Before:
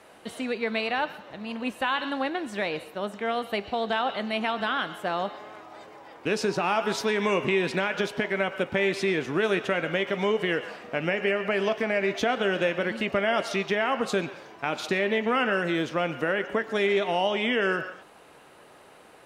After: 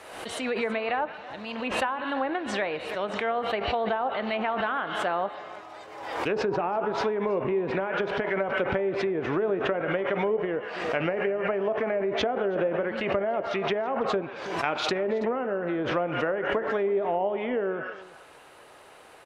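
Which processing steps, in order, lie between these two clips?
treble ducked by the level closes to 670 Hz, closed at -21 dBFS; bell 200 Hz -8 dB 1.4 oct; on a send: echo 0.326 s -18.5 dB; on the sum: backwards sustainer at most 49 dB/s; gain +2 dB

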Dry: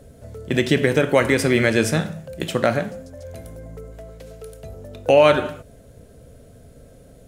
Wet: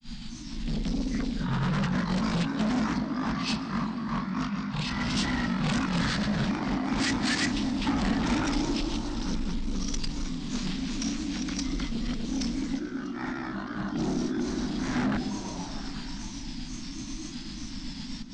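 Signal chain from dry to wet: reverse delay 0.335 s, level -1 dB; high shelf 3800 Hz +11.5 dB; de-hum 82.59 Hz, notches 20; in parallel at -2.5 dB: limiter -7.5 dBFS, peak gain reduction 7.5 dB; on the sum: negative-ratio compressor -18 dBFS, ratio -0.5; formant shift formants +5 st; grains 0.1 s, grains 20/s, pitch spread up and down by 3 st; fixed phaser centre 500 Hz, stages 4; soft clip -25 dBFS, distortion -6 dB; wide varispeed 0.397×; delay with a stepping band-pass 0.21 s, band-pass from 290 Hz, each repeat 0.7 oct, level -3 dB; reverb RT60 2.8 s, pre-delay 0.1 s, DRR 16 dB

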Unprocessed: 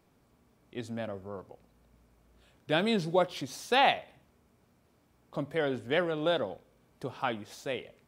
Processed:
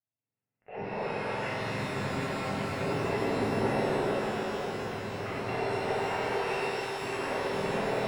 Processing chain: spectrum mirrored in octaves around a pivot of 1200 Hz; Doppler pass-by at 3.14, 17 m/s, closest 13 m; recorder AGC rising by 18 dB/s; treble ducked by the level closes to 650 Hz, closed at -32 dBFS; sample leveller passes 5; limiter -29.5 dBFS, peak gain reduction 10.5 dB; sample leveller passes 3; rippled Chebyshev low-pass 2800 Hz, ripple 6 dB; on a send: echo with dull and thin repeats by turns 0.281 s, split 810 Hz, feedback 77%, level -3 dB; on the sum: spectral freeze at 1.83, 0.96 s; shimmer reverb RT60 3 s, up +12 st, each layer -8 dB, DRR -8 dB; gain -5.5 dB

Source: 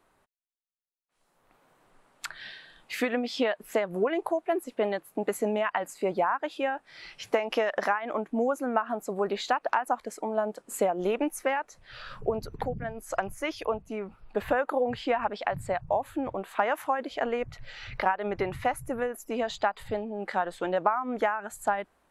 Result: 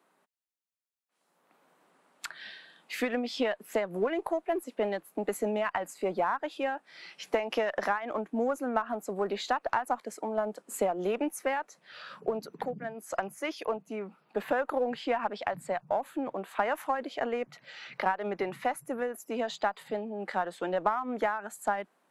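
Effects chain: steep high-pass 160 Hz 48 dB/oct; in parallel at -9.5 dB: one-sided clip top -30 dBFS; on the sum: gain -4.5 dB

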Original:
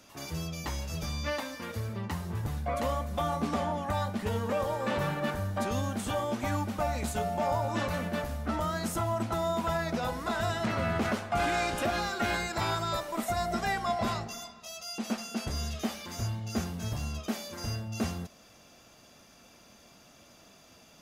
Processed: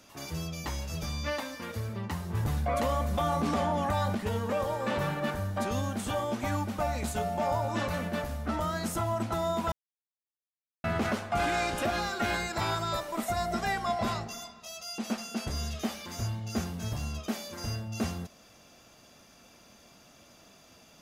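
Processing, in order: 2.34–4.15 fast leveller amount 70%; 9.72–10.84 mute

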